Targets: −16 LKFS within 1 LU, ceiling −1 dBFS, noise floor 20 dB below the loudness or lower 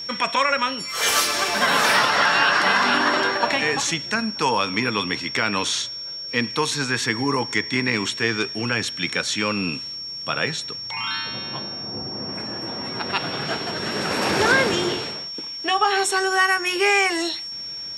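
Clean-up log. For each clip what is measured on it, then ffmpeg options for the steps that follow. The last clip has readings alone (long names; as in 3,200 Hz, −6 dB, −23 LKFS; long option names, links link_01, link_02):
interfering tone 5,500 Hz; level of the tone −30 dBFS; integrated loudness −21.5 LKFS; sample peak −5.0 dBFS; target loudness −16.0 LKFS
→ -af "bandreject=frequency=5500:width=30"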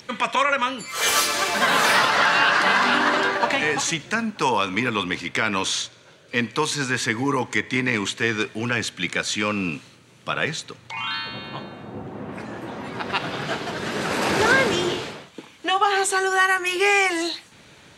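interfering tone none found; integrated loudness −21.5 LKFS; sample peak −5.0 dBFS; target loudness −16.0 LKFS
→ -af "volume=5.5dB,alimiter=limit=-1dB:level=0:latency=1"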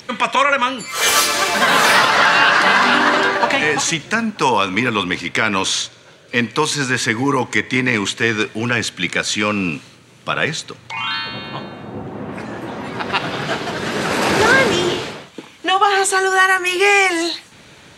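integrated loudness −16.0 LKFS; sample peak −1.0 dBFS; background noise floor −45 dBFS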